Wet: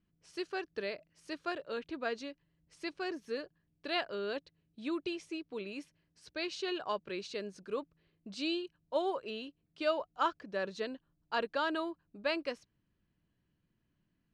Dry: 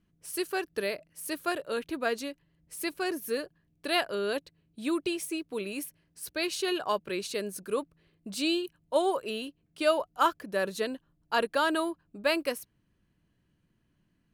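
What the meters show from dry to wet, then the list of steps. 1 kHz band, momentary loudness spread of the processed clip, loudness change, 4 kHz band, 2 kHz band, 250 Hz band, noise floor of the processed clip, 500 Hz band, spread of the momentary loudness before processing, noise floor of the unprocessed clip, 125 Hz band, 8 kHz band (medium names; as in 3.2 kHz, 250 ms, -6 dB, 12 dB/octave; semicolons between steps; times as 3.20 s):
-6.5 dB, 13 LU, -6.5 dB, -6.5 dB, -6.5 dB, -6.5 dB, -79 dBFS, -6.5 dB, 11 LU, -73 dBFS, no reading, -17.5 dB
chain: low-pass 5.9 kHz 24 dB/octave; trim -6.5 dB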